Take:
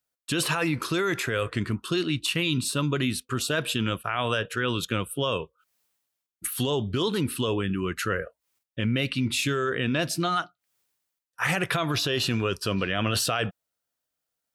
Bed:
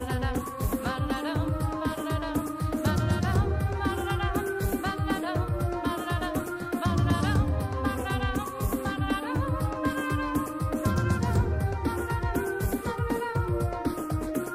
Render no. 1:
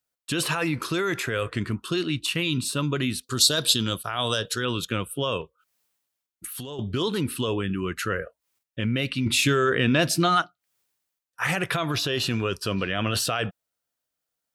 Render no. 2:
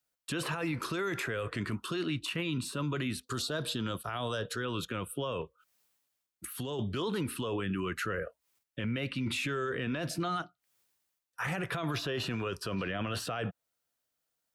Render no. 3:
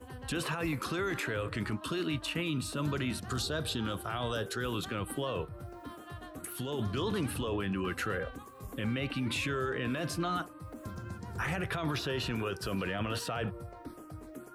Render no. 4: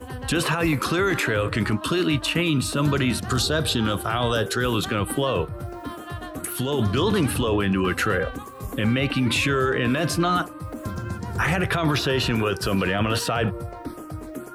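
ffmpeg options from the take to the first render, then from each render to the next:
-filter_complex "[0:a]asettb=1/sr,asplit=3[a][b][c];[a]atrim=end=3.234[d];[b]atrim=start=3.23:end=4.65,asetpts=PTS-STARTPTS,afade=t=in:d=0.004:c=qsin,afade=t=out:st=1.416:d=0.004:c=qsin,highshelf=f=3.2k:t=q:w=3:g=9[e];[c]atrim=start=4.646[f];[d][e]acrossfade=d=0.004:c1=hsin:c2=qsin[g];[g][f]acrossfade=d=0.004:c1=qsin:c2=hsin,asettb=1/sr,asplit=3[h][i][j];[h]atrim=end=5.414[k];[i]atrim=start=5.41:end=6.79,asetpts=PTS-STARTPTS,afade=t=in:d=0.004:c=qsin,afade=t=out:st=1.376:d=0.004:c=qsin,acompressor=threshold=-32dB:ratio=6:attack=3.2:release=140:knee=1:detection=peak[l];[j]atrim=start=6.786[m];[k][l]acrossfade=d=0.004:c1=hsin:c2=qsin[n];[n][m]acrossfade=d=0.004:c1=qsin:c2=hsin,asettb=1/sr,asplit=3[o][p][q];[o]atrim=end=9.264[r];[p]atrim=start=9.26:end=10.42,asetpts=PTS-STARTPTS,afade=t=in:d=0.004:c=qsin,afade=t=out:st=1.156:d=0.004:c=qsin,acontrast=27[s];[q]atrim=start=10.416[t];[r][s]acrossfade=d=0.004:c1=hsin:c2=qsin[u];[u][t]acrossfade=d=0.004:c1=qsin:c2=hsin"
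-filter_complex "[0:a]acrossover=split=87|530|2100[a][b][c][d];[a]acompressor=threshold=-52dB:ratio=4[e];[b]acompressor=threshold=-31dB:ratio=4[f];[c]acompressor=threshold=-32dB:ratio=4[g];[d]acompressor=threshold=-42dB:ratio=4[h];[e][f][g][h]amix=inputs=4:normalize=0,alimiter=level_in=1.5dB:limit=-24dB:level=0:latency=1:release=11,volume=-1.5dB"
-filter_complex "[1:a]volume=-16.5dB[a];[0:a][a]amix=inputs=2:normalize=0"
-af "volume=11.5dB"

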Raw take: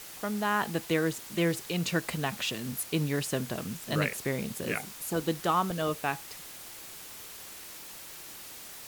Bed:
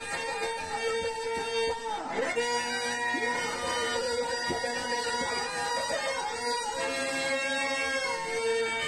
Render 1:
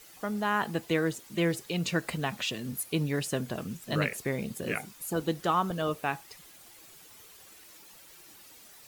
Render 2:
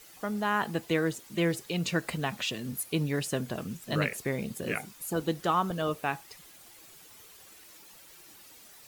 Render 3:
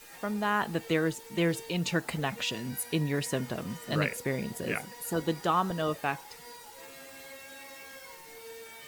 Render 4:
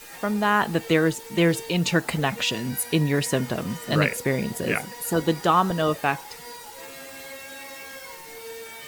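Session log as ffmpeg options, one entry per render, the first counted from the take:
-af "afftdn=nr=10:nf=-46"
-af anull
-filter_complex "[1:a]volume=-18.5dB[a];[0:a][a]amix=inputs=2:normalize=0"
-af "volume=7.5dB"

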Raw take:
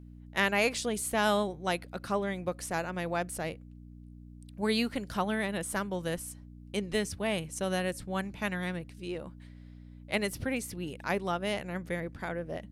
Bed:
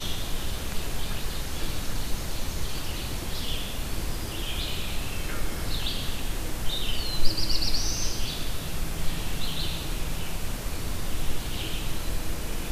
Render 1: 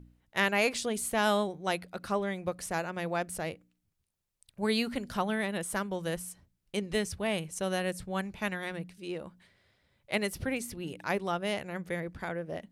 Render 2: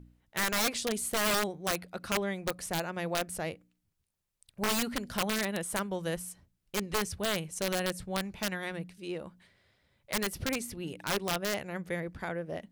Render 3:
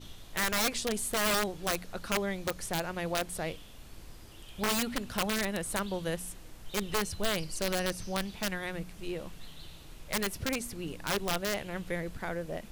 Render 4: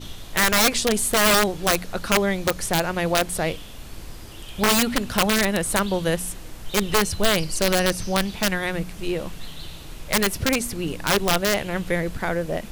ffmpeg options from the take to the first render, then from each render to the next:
-af "bandreject=f=60:t=h:w=4,bandreject=f=120:t=h:w=4,bandreject=f=180:t=h:w=4,bandreject=f=240:t=h:w=4,bandreject=f=300:t=h:w=4"
-af "aeval=exprs='(mod(12.6*val(0)+1,2)-1)/12.6':c=same"
-filter_complex "[1:a]volume=-18.5dB[a];[0:a][a]amix=inputs=2:normalize=0"
-af "volume=11dB"

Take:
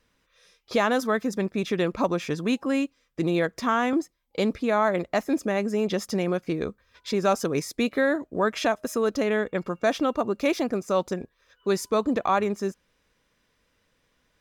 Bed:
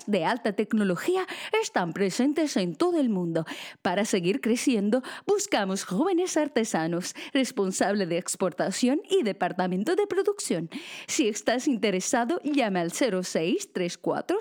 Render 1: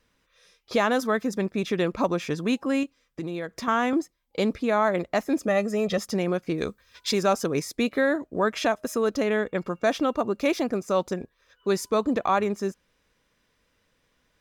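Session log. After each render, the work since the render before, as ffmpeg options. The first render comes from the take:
-filter_complex "[0:a]asettb=1/sr,asplit=3[a][b][c];[a]atrim=end=2.834[d];[b]atrim=start=2.83:end=3.68,asetpts=PTS-STARTPTS,afade=t=in:d=0.004:c=qsin,afade=t=out:st=0.846:d=0.004:c=qsin,acompressor=threshold=-30dB:ratio=3:attack=3.2:release=140:knee=1:detection=peak[e];[c]atrim=start=3.676[f];[d][e]acrossfade=d=0.004:c1=hsin:c2=qsin[g];[g][f]acrossfade=d=0.004:c1=qsin:c2=hsin,asettb=1/sr,asplit=3[h][i][j];[h]atrim=end=5.484[k];[i]atrim=start=5.48:end=5.98,asetpts=PTS-STARTPTS,afade=t=in:d=0.004:c=qsin,afade=t=out:st=0.496:d=0.004:c=qsin,aecho=1:1:1.6:0.79,atrim=end_sample=22050[l];[j]atrim=start=5.976[m];[k][l]acrossfade=d=0.004:c1=hsin:c2=qsin[n];[n][m]acrossfade=d=0.004:c1=qsin:c2=hsin,asettb=1/sr,asplit=3[o][p][q];[o]atrim=end=6.584[r];[p]atrim=start=6.58:end=7.23,asetpts=PTS-STARTPTS,afade=t=in:d=0.004:c=qsin,afade=t=out:st=0.646:d=0.004:c=qsin,highshelf=f=2.5k:g=11[s];[q]atrim=start=7.226[t];[r][s]acrossfade=d=0.004:c1=hsin:c2=qsin[u];[u][t]acrossfade=d=0.004:c1=qsin:c2=hsin"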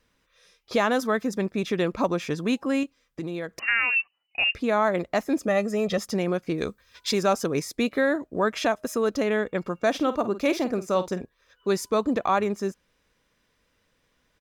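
-filter_complex "[0:a]asettb=1/sr,asplit=3[a][b][c];[a]atrim=end=3.594[d];[b]atrim=start=3.59:end=4.55,asetpts=PTS-STARTPTS,afade=t=in:d=0.004:c=qsin,afade=t=out:st=0.956:d=0.004:c=qsin,lowpass=f=2.6k:t=q:w=0.5098,lowpass=f=2.6k:t=q:w=0.6013,lowpass=f=2.6k:t=q:w=0.9,lowpass=f=2.6k:t=q:w=2.563,afreqshift=-3000[e];[c]atrim=start=4.546[f];[d][e]acrossfade=d=0.004:c1=hsin:c2=qsin[g];[g][f]acrossfade=d=0.004:c1=qsin:c2=hsin,asplit=3[h][i][j];[h]afade=t=out:st=9.94:d=0.02[k];[i]asplit=2[l][m];[m]adelay=49,volume=-12.5dB[n];[l][n]amix=inputs=2:normalize=0,afade=t=in:st=9.94:d=0.02,afade=t=out:st=11.21:d=0.02[o];[j]afade=t=in:st=11.21:d=0.02[p];[k][o][p]amix=inputs=3:normalize=0"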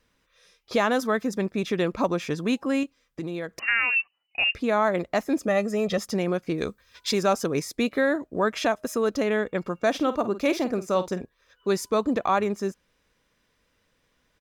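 -af anull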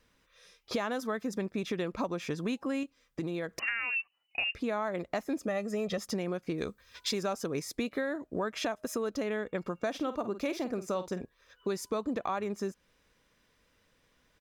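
-af "acompressor=threshold=-31dB:ratio=4"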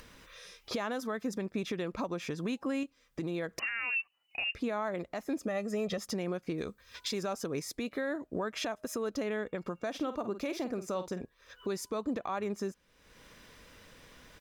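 -af "alimiter=level_in=0.5dB:limit=-24dB:level=0:latency=1:release=112,volume=-0.5dB,acompressor=mode=upward:threshold=-42dB:ratio=2.5"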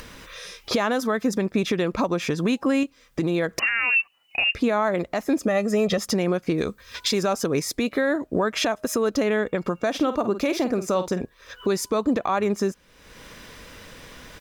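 -af "volume=12dB"

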